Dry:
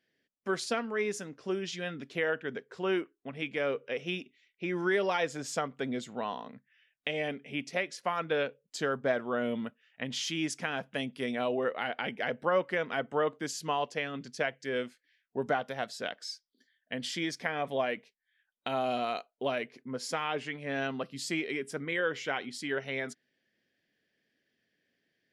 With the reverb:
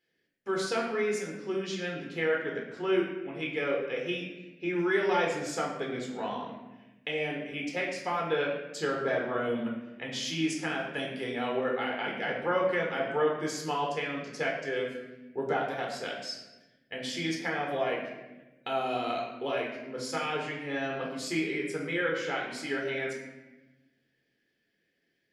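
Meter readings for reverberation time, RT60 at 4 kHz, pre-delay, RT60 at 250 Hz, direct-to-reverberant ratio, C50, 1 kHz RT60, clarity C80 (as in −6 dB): 1.1 s, 0.80 s, 14 ms, 1.6 s, −1.5 dB, 3.5 dB, 0.95 s, 6.0 dB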